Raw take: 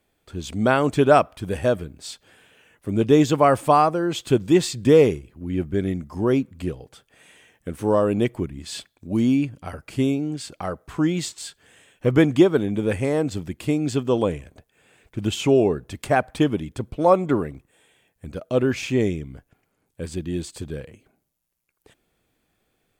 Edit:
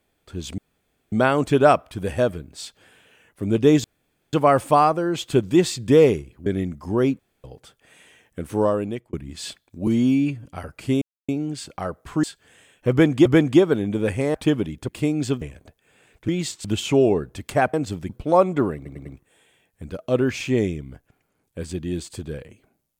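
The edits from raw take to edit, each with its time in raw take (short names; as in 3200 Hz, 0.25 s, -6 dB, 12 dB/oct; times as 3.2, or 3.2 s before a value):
0.58 insert room tone 0.54 s
3.3 insert room tone 0.49 s
5.43–5.75 cut
6.48–6.73 room tone
7.9–8.42 fade out
9.16–9.55 stretch 1.5×
10.11 insert silence 0.27 s
11.06–11.42 move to 15.19
12.09–12.44 loop, 2 plays
13.18–13.54 swap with 16.28–16.82
14.07–14.32 cut
17.48 stutter 0.10 s, 4 plays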